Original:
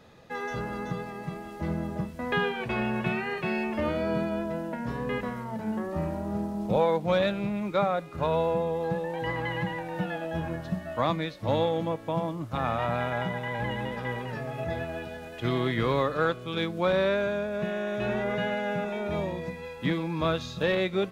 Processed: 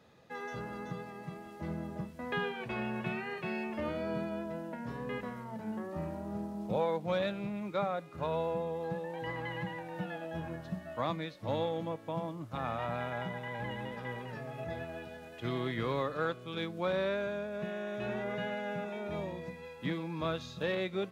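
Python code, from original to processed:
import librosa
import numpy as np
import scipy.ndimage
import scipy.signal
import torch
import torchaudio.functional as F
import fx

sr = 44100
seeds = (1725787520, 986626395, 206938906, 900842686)

y = scipy.signal.sosfilt(scipy.signal.butter(2, 76.0, 'highpass', fs=sr, output='sos'), x)
y = y * 10.0 ** (-7.5 / 20.0)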